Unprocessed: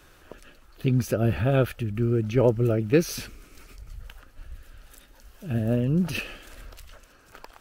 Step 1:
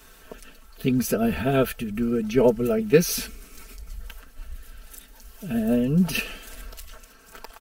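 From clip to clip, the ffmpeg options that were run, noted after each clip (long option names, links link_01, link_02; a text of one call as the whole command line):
ffmpeg -i in.wav -af "highshelf=frequency=6600:gain=9,aecho=1:1:4.5:0.91" out.wav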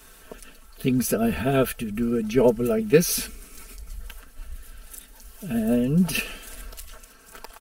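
ffmpeg -i in.wav -af "equalizer=frequency=9900:width_type=o:width=0.59:gain=5.5" out.wav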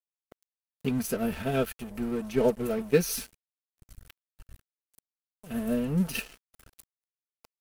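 ffmpeg -i in.wav -af "agate=range=-7dB:threshold=-38dB:ratio=16:detection=peak,aeval=exprs='sgn(val(0))*max(abs(val(0))-0.0178,0)':channel_layout=same,volume=-5dB" out.wav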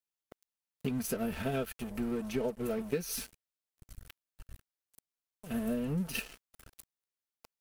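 ffmpeg -i in.wav -af "acompressor=threshold=-30dB:ratio=6" out.wav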